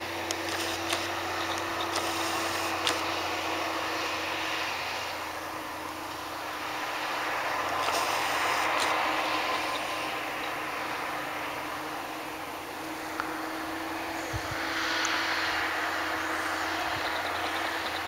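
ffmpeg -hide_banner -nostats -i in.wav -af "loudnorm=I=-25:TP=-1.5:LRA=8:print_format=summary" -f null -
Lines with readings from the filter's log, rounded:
Input Integrated:    -30.1 LUFS
Input True Peak:      -8.0 dBTP
Input LRA:             4.3 LU
Input Threshold:     -40.1 LUFS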